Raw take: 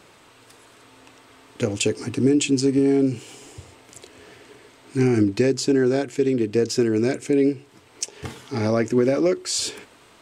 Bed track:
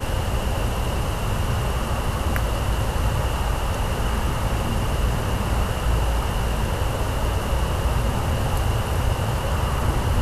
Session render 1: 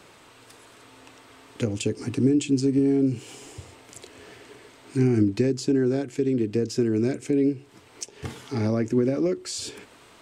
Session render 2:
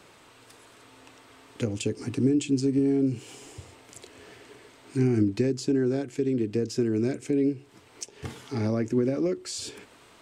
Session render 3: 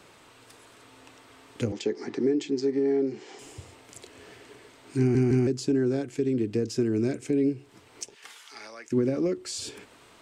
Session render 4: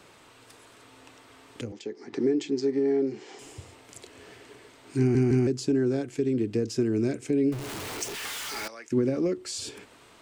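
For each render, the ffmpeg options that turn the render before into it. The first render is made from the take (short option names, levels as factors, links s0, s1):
-filter_complex "[0:a]acrossover=split=340[s0][s1];[s1]acompressor=threshold=0.0141:ratio=2[s2];[s0][s2]amix=inputs=2:normalize=0"
-af "volume=0.75"
-filter_complex "[0:a]asettb=1/sr,asplit=3[s0][s1][s2];[s0]atrim=end=1.724[s3];[s1]atrim=start=1.72:end=3.39,asetpts=PTS-STARTPTS,afade=t=in:d=0.004:c=qsin,afade=t=out:st=1.666:d=0.004:c=qsin,highpass=f=200:w=0.5412,highpass=f=200:w=1.3066,equalizer=f=270:t=q:w=4:g=-6,equalizer=f=380:t=q:w=4:g=6,equalizer=f=810:t=q:w=4:g=7,equalizer=f=1900:t=q:w=4:g=9,equalizer=f=2700:t=q:w=4:g=-8,lowpass=f=5900:w=0.5412,lowpass=f=5900:w=1.3066[s4];[s2]atrim=start=3.386[s5];[s3][s4]acrossfade=d=0.004:c1=hsin:c2=qsin[s6];[s6][s5]acrossfade=d=0.004:c1=qsin:c2=hsin,asplit=3[s7][s8][s9];[s7]afade=t=out:st=8.14:d=0.02[s10];[s8]highpass=1300,afade=t=in:st=8.14:d=0.02,afade=t=out:st=8.91:d=0.02[s11];[s9]afade=t=in:st=8.91:d=0.02[s12];[s10][s11][s12]amix=inputs=3:normalize=0,asplit=4[s13][s14][s15][s16];[s13]atrim=end=5.152[s17];[s14]atrim=start=4.988:end=5.152[s18];[s15]atrim=start=4.988:end=5.152[s19];[s16]atrim=start=5.468[s20];[s17][s18]acrossfade=d=0.004:c1=hsin:c2=hsin[s21];[s21][s19]acrossfade=d=0.004:c1=hsin:c2=hsin[s22];[s22][s20]acrossfade=d=0.004:c1=hsin:c2=hsin"
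-filter_complex "[0:a]asettb=1/sr,asplit=3[s0][s1][s2];[s0]atrim=end=7.524[s3];[s1]atrim=start=7.52:end=8.68,asetpts=PTS-STARTPTS,afade=t=in:d=0.004:c=qsin,afade=t=out:st=1.156:d=0.004:c=qsin,aeval=exprs='val(0)+0.5*0.0282*sgn(val(0))':c=same[s4];[s2]atrim=start=8.676[s5];[s3][s4]acrossfade=d=0.004:c1=hsin:c2=qsin[s6];[s6][s5]acrossfade=d=0.004:c1=qsin:c2=hsin,asplit=3[s7][s8][s9];[s7]atrim=end=1.612[s10];[s8]atrim=start=1.608:end=2.132,asetpts=PTS-STARTPTS,volume=0.398[s11];[s9]atrim=start=2.128[s12];[s10][s11]acrossfade=d=0.004:c1=hsin:c2=hsin[s13];[s13][s12]acrossfade=d=0.004:c1=hsin:c2=hsin"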